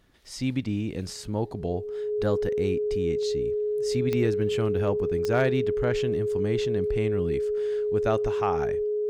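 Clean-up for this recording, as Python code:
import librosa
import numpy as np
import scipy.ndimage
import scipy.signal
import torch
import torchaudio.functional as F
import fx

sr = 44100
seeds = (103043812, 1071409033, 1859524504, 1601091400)

y = fx.fix_declip(x, sr, threshold_db=-14.0)
y = fx.fix_declick_ar(y, sr, threshold=10.0)
y = fx.notch(y, sr, hz=420.0, q=30.0)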